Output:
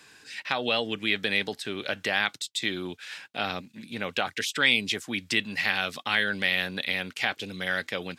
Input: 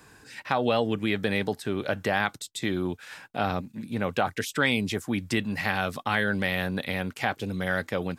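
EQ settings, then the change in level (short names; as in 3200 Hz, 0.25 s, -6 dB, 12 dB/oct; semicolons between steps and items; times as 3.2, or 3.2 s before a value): weighting filter D; -4.5 dB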